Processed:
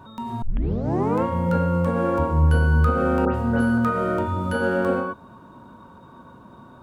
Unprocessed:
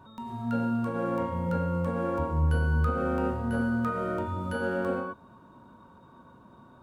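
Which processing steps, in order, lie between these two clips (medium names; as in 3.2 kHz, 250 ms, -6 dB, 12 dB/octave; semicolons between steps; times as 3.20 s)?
0.42 s: tape start 0.82 s; 3.25–3.78 s: phase dispersion highs, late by 98 ms, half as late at 2.6 kHz; trim +7.5 dB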